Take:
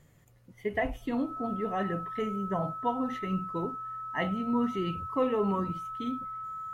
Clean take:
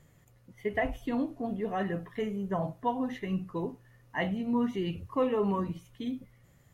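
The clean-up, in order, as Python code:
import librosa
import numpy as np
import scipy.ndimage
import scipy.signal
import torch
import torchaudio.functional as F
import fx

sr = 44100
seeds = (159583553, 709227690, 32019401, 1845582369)

y = fx.notch(x, sr, hz=1300.0, q=30.0)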